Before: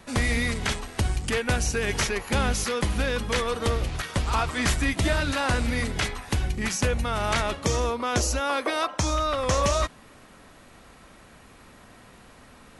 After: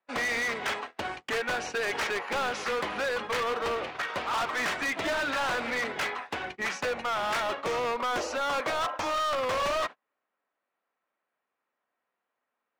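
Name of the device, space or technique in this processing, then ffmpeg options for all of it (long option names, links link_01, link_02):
walkie-talkie: -af "highpass=530,lowpass=2300,asoftclip=type=hard:threshold=-32dB,agate=range=-35dB:threshold=-42dB:ratio=16:detection=peak,volume=5.5dB"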